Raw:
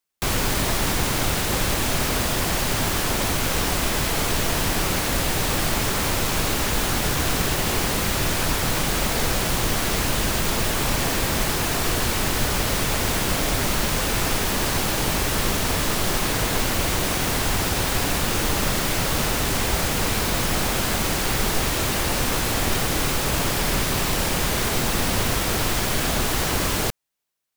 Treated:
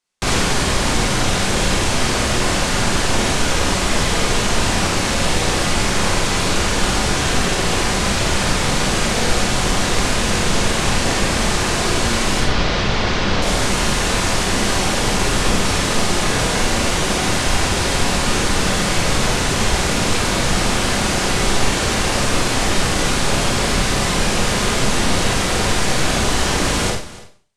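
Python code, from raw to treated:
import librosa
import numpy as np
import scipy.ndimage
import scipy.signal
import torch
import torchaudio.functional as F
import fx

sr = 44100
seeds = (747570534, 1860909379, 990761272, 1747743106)

y = x + 10.0 ** (-18.0 / 20.0) * np.pad(x, (int(288 * sr / 1000.0), 0))[:len(x)]
y = fx.rider(y, sr, range_db=10, speed_s=0.5)
y = fx.lowpass(y, sr, hz=fx.steps((0.0, 9100.0), (12.4, 5200.0), (13.42, 9400.0)), slope=24)
y = fx.rev_schroeder(y, sr, rt60_s=0.44, comb_ms=31, drr_db=-1.0)
y = y * librosa.db_to_amplitude(2.0)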